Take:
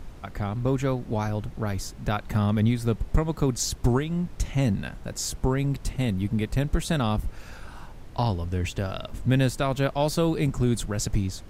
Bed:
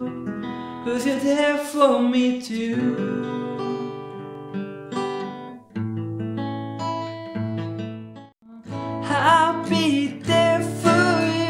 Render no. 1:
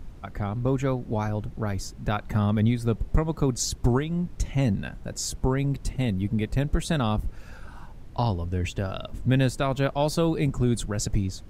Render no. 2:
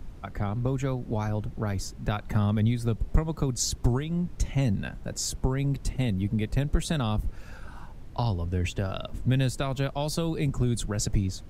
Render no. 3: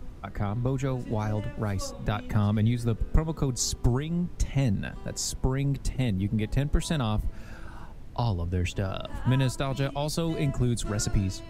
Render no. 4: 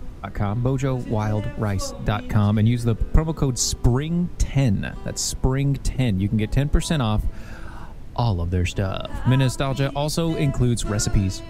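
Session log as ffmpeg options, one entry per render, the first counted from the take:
-af "afftdn=nr=6:nf=-43"
-filter_complex "[0:a]acrossover=split=150|3000[s0][s1][s2];[s1]acompressor=threshold=0.0447:ratio=6[s3];[s0][s3][s2]amix=inputs=3:normalize=0"
-filter_complex "[1:a]volume=0.0596[s0];[0:a][s0]amix=inputs=2:normalize=0"
-af "volume=2"

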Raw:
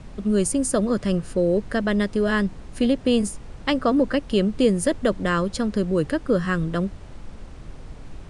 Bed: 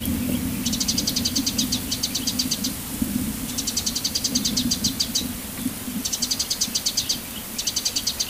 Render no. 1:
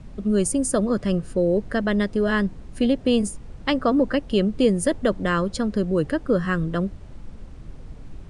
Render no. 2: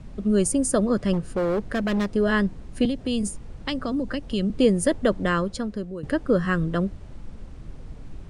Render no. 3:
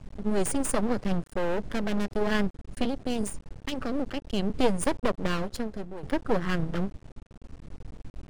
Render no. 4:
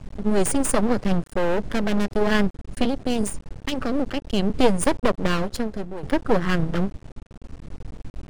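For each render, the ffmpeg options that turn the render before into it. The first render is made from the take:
-af "afftdn=nr=6:nf=-41"
-filter_complex "[0:a]asettb=1/sr,asplit=3[s0][s1][s2];[s0]atrim=end=1.134[s3];[s1]atrim=start=1.13:end=2.13,asetpts=PTS-STARTPTS,afade=t=in:d=0.004:c=qsin,afade=t=out:st=0.996:d=0.004:c=qsin,asoftclip=type=hard:threshold=0.1[s4];[s2]atrim=start=2.126[s5];[s3][s4]acrossfade=d=0.004:c1=hsin:c2=qsin[s6];[s6][s5]acrossfade=d=0.004:c1=qsin:c2=hsin,asettb=1/sr,asplit=3[s7][s8][s9];[s7]atrim=end=2.854[s10];[s8]atrim=start=2.85:end=4.5,asetpts=PTS-STARTPTS,afade=t=in:d=0.004:c=qsin,afade=t=out:st=1.646:d=0.004:c=qsin,acrossover=split=210|3000[s11][s12][s13];[s12]acompressor=threshold=0.0398:ratio=6:attack=3.2:release=140:knee=2.83:detection=peak[s14];[s11][s14][s13]amix=inputs=3:normalize=0[s15];[s9]atrim=start=4.496[s16];[s10][s15]acrossfade=d=0.004:c1=hsin:c2=qsin[s17];[s17][s16]acrossfade=d=0.004:c1=qsin:c2=hsin,asplit=2[s18][s19];[s18]atrim=end=6.03,asetpts=PTS-STARTPTS,afade=t=out:st=5.24:d=0.79:silence=0.158489[s20];[s19]atrim=start=6.03,asetpts=PTS-STARTPTS,afade=t=in:d=0.004:c=hsin:silence=0.158489[s21];[s20][s21]concat=n=2:v=0:a=1"
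-af "aeval=exprs='max(val(0),0)':c=same"
-af "volume=2"

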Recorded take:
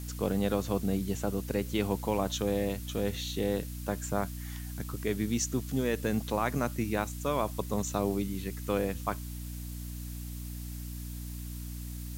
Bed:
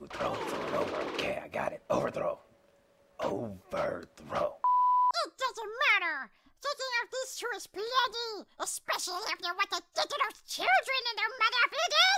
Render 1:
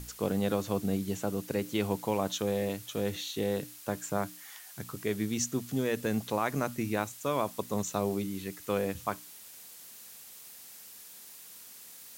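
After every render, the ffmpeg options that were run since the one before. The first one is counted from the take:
-af "bandreject=f=60:t=h:w=6,bandreject=f=120:t=h:w=6,bandreject=f=180:t=h:w=6,bandreject=f=240:t=h:w=6,bandreject=f=300:t=h:w=6"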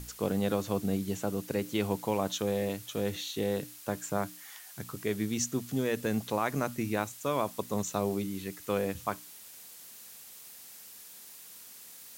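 -af anull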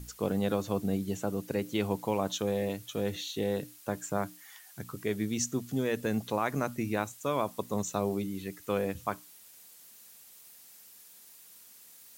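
-af "afftdn=nr=6:nf=-50"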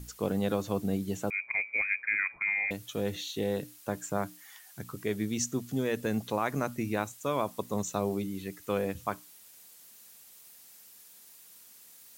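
-filter_complex "[0:a]asettb=1/sr,asplit=3[s0][s1][s2];[s0]atrim=end=1.304[s3];[s1]atrim=start=1.3:end=2.71,asetpts=PTS-STARTPTS,afade=t=in:d=0.004:c=qsin,afade=t=out:st=1.406:d=0.004:c=qsin,lowpass=f=2200:t=q:w=0.5098,lowpass=f=2200:t=q:w=0.6013,lowpass=f=2200:t=q:w=0.9,lowpass=f=2200:t=q:w=2.563,afreqshift=-2600[s4];[s2]atrim=start=2.706[s5];[s3][s4]acrossfade=d=0.004:c1=hsin:c2=qsin[s6];[s6][s5]acrossfade=d=0.004:c1=qsin:c2=hsin"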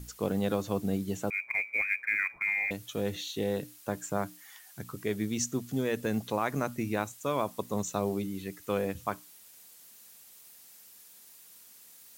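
-af "acrusher=bits=8:mode=log:mix=0:aa=0.000001"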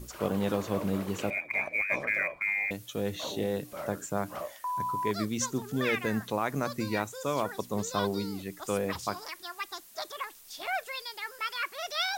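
-filter_complex "[1:a]volume=0.447[s0];[0:a][s0]amix=inputs=2:normalize=0"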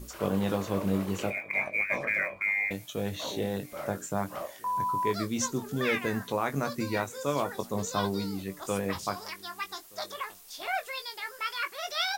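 -filter_complex "[0:a]asplit=2[s0][s1];[s1]adelay=21,volume=0.422[s2];[s0][s2]amix=inputs=2:normalize=0,asplit=2[s3][s4];[s4]adelay=1224,volume=0.0562,highshelf=f=4000:g=-27.6[s5];[s3][s5]amix=inputs=2:normalize=0"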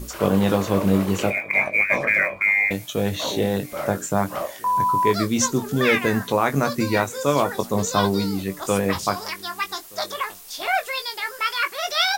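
-af "volume=2.99"

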